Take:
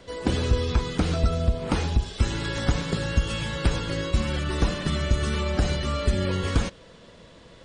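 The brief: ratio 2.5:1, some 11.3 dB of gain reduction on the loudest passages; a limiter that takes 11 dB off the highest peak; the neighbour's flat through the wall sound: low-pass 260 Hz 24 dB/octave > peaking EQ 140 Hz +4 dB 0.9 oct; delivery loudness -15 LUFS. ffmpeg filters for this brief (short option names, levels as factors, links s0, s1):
-af "acompressor=threshold=0.02:ratio=2.5,alimiter=level_in=1.78:limit=0.0631:level=0:latency=1,volume=0.562,lowpass=f=260:w=0.5412,lowpass=f=260:w=1.3066,equalizer=f=140:t=o:w=0.9:g=4,volume=16.8"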